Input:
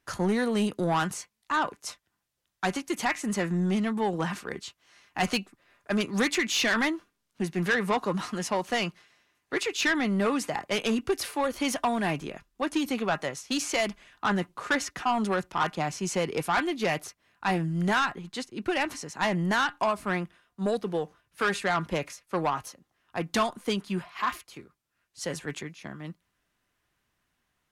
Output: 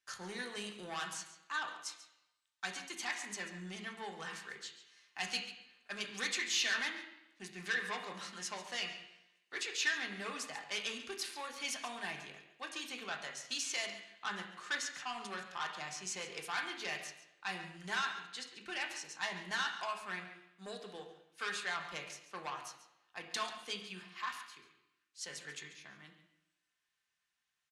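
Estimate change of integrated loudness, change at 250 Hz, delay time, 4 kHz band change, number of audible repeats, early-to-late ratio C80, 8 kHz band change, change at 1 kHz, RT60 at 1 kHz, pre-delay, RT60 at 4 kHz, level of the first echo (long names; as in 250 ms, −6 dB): −11.0 dB, −22.5 dB, 139 ms, −5.5 dB, 1, 9.0 dB, −6.0 dB, −13.5 dB, 0.85 s, 3 ms, 0.85 s, −13.0 dB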